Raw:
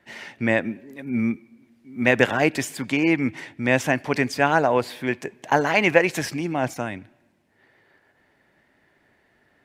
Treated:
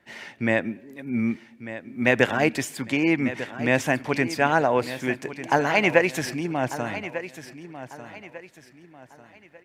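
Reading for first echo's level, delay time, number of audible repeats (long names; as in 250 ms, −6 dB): −13.0 dB, 1,196 ms, 3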